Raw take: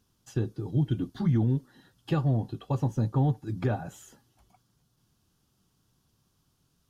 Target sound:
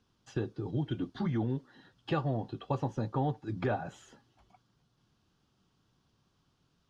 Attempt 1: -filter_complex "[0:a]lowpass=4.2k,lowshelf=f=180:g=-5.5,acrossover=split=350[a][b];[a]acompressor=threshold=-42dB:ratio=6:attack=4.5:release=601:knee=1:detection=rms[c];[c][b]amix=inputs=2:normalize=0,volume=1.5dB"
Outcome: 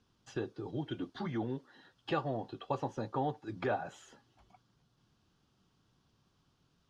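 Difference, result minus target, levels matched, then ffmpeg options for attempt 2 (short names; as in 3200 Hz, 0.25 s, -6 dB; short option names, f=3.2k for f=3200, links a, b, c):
compressor: peak gain reduction +9 dB
-filter_complex "[0:a]lowpass=4.2k,lowshelf=f=180:g=-5.5,acrossover=split=350[a][b];[a]acompressor=threshold=-31dB:ratio=6:attack=4.5:release=601:knee=1:detection=rms[c];[c][b]amix=inputs=2:normalize=0,volume=1.5dB"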